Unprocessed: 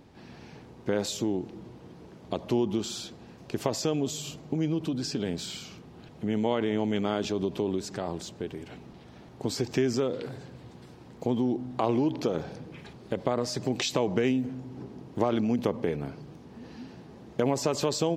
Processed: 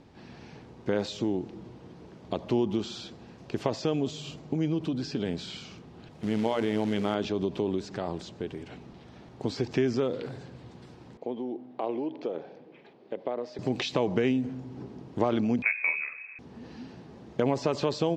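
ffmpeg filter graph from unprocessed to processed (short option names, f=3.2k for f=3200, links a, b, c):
-filter_complex "[0:a]asettb=1/sr,asplit=3[a][b][c];[a]atrim=end=6.114[d];[b]atrim=start=6.11:end=7.15,asetpts=PTS-STARTPTS,afade=t=in:d=0.004:c=qsin,afade=t=out:st=1.036:d=0.004:c=qsin,bandreject=f=60:t=h:w=6,bandreject=f=120:t=h:w=6,bandreject=f=180:t=h:w=6,bandreject=f=240:t=h:w=6,bandreject=f=300:t=h:w=6,bandreject=f=360:t=h:w=6,bandreject=f=420:t=h:w=6,bandreject=f=480:t=h:w=6,acrusher=bits=4:mode=log:mix=0:aa=0.000001[e];[c]atrim=start=7.146[f];[d][e]acrossfade=d=0.004:c1=hsin:c2=qsin[g];[g][f]acrossfade=d=0.004:c1=qsin:c2=hsin,asettb=1/sr,asplit=3[h][i][j];[h]atrim=end=11.174[k];[i]atrim=start=11.17:end=13.59,asetpts=PTS-STARTPTS,afade=t=in:d=0.004:c=qsin,afade=t=out:st=2.416:d=0.004:c=qsin,highpass=400,lowpass=2.2k,equalizer=f=1.3k:t=o:w=1.4:g=-9.5[l];[j]atrim=start=13.586[m];[k][l]acrossfade=d=0.004:c1=hsin:c2=qsin[n];[n][m]acrossfade=d=0.004:c1=qsin:c2=hsin,asettb=1/sr,asplit=3[o][p][q];[o]atrim=end=15.624[r];[p]atrim=start=15.62:end=16.39,asetpts=PTS-STARTPTS,afade=t=in:d=0.004:c=qsin,afade=t=out:st=0.766:d=0.004:c=qsin,lowpass=f=2.3k:t=q:w=0.5098,lowpass=f=2.3k:t=q:w=0.6013,lowpass=f=2.3k:t=q:w=0.9,lowpass=f=2.3k:t=q:w=2.563,afreqshift=-2700,asplit=2[s][t];[t]adelay=15,volume=-6.5dB[u];[s][u]amix=inputs=2:normalize=0,atrim=end_sample=33957[v];[q]atrim=start=16.386[w];[r][v]acrossfade=d=0.004:c1=hsin:c2=qsin[x];[x][w]acrossfade=d=0.004:c1=qsin:c2=hsin,lowpass=7.4k,acrossover=split=4900[y][z];[z]acompressor=threshold=-56dB:ratio=4:attack=1:release=60[aa];[y][aa]amix=inputs=2:normalize=0"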